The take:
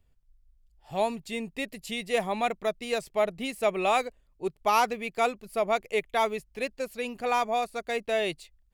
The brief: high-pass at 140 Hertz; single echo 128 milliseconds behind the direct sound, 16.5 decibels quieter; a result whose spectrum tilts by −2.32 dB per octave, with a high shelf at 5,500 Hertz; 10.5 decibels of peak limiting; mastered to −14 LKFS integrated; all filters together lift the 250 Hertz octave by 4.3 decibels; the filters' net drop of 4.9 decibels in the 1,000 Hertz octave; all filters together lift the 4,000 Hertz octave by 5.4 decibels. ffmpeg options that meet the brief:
ffmpeg -i in.wav -af "highpass=140,equalizer=frequency=250:width_type=o:gain=6,equalizer=frequency=1000:width_type=o:gain=-8,equalizer=frequency=4000:width_type=o:gain=9,highshelf=frequency=5500:gain=-5.5,alimiter=limit=-23.5dB:level=0:latency=1,aecho=1:1:128:0.15,volume=20dB" out.wav

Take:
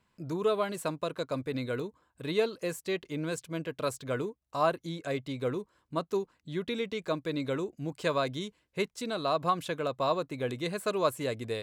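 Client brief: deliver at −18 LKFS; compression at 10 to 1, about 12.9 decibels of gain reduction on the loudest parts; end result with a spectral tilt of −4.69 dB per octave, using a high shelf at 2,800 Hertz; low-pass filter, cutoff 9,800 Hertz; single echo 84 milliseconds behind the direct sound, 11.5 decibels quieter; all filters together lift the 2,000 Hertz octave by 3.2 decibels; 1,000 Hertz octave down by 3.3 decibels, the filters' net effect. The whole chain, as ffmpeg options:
ffmpeg -i in.wav -af "lowpass=9800,equalizer=frequency=1000:width_type=o:gain=-6,equalizer=frequency=2000:width_type=o:gain=4.5,highshelf=frequency=2800:gain=3.5,acompressor=threshold=-36dB:ratio=10,aecho=1:1:84:0.266,volume=23dB" out.wav

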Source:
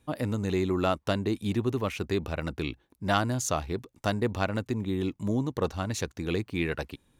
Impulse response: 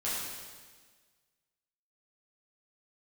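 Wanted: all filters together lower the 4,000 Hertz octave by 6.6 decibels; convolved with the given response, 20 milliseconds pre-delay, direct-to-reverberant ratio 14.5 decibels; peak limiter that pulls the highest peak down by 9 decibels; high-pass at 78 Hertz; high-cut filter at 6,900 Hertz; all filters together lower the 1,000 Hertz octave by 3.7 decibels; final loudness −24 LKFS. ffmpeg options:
-filter_complex "[0:a]highpass=78,lowpass=6900,equalizer=frequency=1000:width_type=o:gain=-5,equalizer=frequency=4000:width_type=o:gain=-8,alimiter=limit=-21dB:level=0:latency=1,asplit=2[link_01][link_02];[1:a]atrim=start_sample=2205,adelay=20[link_03];[link_02][link_03]afir=irnorm=-1:irlink=0,volume=-21dB[link_04];[link_01][link_04]amix=inputs=2:normalize=0,volume=9.5dB"

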